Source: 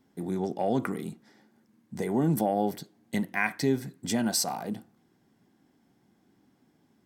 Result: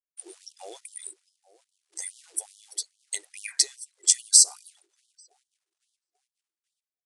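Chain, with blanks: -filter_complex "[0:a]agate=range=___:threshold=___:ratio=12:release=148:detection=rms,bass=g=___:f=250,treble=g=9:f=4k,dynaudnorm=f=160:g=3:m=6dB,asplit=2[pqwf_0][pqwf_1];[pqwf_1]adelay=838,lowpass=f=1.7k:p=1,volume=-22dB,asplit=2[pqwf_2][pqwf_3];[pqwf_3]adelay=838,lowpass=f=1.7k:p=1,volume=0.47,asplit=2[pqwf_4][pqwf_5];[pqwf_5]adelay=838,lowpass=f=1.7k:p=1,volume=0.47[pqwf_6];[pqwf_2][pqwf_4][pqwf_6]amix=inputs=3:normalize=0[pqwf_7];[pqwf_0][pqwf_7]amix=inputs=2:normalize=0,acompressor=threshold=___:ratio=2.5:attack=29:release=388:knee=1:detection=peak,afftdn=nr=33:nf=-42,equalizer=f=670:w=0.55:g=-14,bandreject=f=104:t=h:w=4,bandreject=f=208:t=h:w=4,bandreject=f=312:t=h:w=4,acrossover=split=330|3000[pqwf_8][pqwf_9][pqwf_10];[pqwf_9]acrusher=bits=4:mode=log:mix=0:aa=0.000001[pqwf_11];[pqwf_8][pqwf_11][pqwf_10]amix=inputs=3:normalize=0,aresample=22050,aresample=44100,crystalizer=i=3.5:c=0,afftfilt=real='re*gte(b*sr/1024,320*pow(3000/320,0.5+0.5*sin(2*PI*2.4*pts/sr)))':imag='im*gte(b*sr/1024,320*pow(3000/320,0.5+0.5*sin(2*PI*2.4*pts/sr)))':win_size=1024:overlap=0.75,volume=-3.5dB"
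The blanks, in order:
-14dB, -59dB, 15, -22dB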